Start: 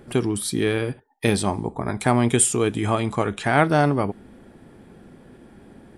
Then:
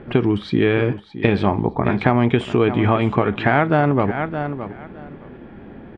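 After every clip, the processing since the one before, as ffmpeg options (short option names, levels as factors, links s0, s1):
-af "lowpass=f=3000:w=0.5412,lowpass=f=3000:w=1.3066,aecho=1:1:616|1232:0.188|0.032,acompressor=threshold=0.1:ratio=6,volume=2.51"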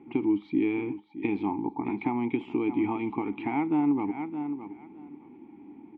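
-filter_complex "[0:a]asplit=3[s0][s1][s2];[s0]bandpass=f=300:t=q:w=8,volume=1[s3];[s1]bandpass=f=870:t=q:w=8,volume=0.501[s4];[s2]bandpass=f=2240:t=q:w=8,volume=0.355[s5];[s3][s4][s5]amix=inputs=3:normalize=0"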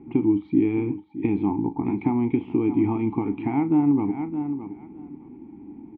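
-filter_complex "[0:a]aemphasis=mode=reproduction:type=riaa,asplit=2[s0][s1];[s1]adelay=36,volume=0.224[s2];[s0][s2]amix=inputs=2:normalize=0"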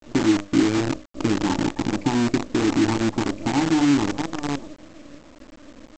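-af "bandreject=f=50:t=h:w=6,bandreject=f=100:t=h:w=6,bandreject=f=150:t=h:w=6,bandreject=f=200:t=h:w=6,bandreject=f=250:t=h:w=6,bandreject=f=300:t=h:w=6,bandreject=f=350:t=h:w=6,bandreject=f=400:t=h:w=6,bandreject=f=450:t=h:w=6,afftdn=nr=27:nf=-36,aresample=16000,acrusher=bits=5:dc=4:mix=0:aa=0.000001,aresample=44100,volume=1.26"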